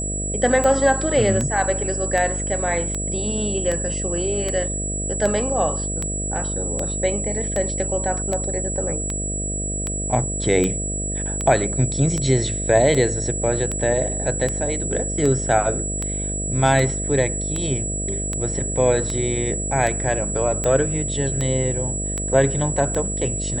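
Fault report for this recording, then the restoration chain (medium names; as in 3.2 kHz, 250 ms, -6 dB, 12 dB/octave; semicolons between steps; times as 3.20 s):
buzz 50 Hz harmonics 13 -28 dBFS
tick 78 rpm -11 dBFS
whine 7.8 kHz -26 dBFS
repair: de-click; de-hum 50 Hz, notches 13; band-stop 7.8 kHz, Q 30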